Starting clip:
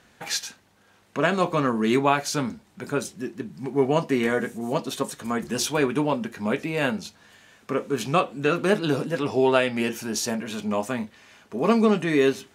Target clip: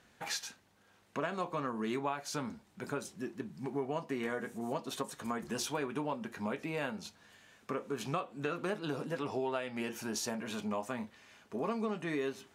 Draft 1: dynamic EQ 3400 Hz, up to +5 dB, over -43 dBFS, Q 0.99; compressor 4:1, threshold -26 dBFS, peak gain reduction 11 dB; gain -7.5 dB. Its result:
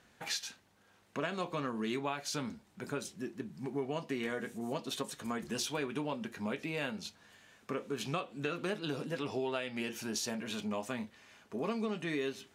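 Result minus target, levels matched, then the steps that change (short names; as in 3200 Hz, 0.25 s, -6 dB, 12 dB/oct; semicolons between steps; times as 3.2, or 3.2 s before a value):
4000 Hz band +3.5 dB
change: dynamic EQ 970 Hz, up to +5 dB, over -43 dBFS, Q 0.99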